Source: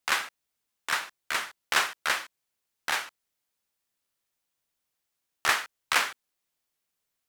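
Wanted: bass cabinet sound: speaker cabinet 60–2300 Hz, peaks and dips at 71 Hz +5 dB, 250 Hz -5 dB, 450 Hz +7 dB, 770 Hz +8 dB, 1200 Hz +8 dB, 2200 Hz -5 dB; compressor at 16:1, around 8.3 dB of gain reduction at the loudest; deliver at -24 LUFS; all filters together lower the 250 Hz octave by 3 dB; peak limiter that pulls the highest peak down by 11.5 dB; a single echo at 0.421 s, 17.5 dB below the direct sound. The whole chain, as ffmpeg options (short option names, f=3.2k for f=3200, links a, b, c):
-af "equalizer=f=250:t=o:g=-4,acompressor=threshold=-27dB:ratio=16,alimiter=limit=-22.5dB:level=0:latency=1,highpass=f=60:w=0.5412,highpass=f=60:w=1.3066,equalizer=f=71:t=q:w=4:g=5,equalizer=f=250:t=q:w=4:g=-5,equalizer=f=450:t=q:w=4:g=7,equalizer=f=770:t=q:w=4:g=8,equalizer=f=1.2k:t=q:w=4:g=8,equalizer=f=2.2k:t=q:w=4:g=-5,lowpass=f=2.3k:w=0.5412,lowpass=f=2.3k:w=1.3066,aecho=1:1:421:0.133,volume=13.5dB"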